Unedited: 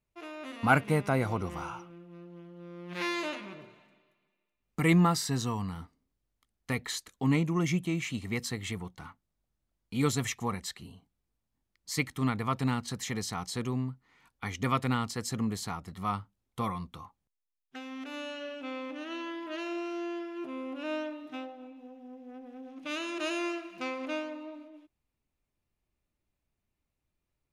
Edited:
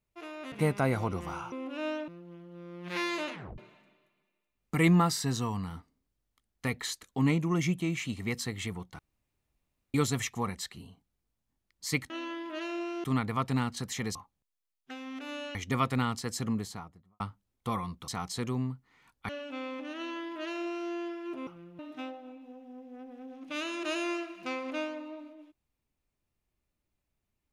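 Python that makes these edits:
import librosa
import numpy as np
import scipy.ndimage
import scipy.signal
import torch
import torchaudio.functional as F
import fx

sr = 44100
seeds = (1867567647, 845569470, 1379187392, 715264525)

y = fx.studio_fade_out(x, sr, start_s=15.37, length_s=0.75)
y = fx.edit(y, sr, fx.cut(start_s=0.52, length_s=0.29),
    fx.swap(start_s=1.81, length_s=0.32, other_s=20.58, other_length_s=0.56),
    fx.tape_stop(start_s=3.38, length_s=0.25),
    fx.room_tone_fill(start_s=9.04, length_s=0.95),
    fx.swap(start_s=13.26, length_s=1.21, other_s=17.0, other_length_s=1.4),
    fx.duplicate(start_s=19.07, length_s=0.94, to_s=12.15), tone=tone)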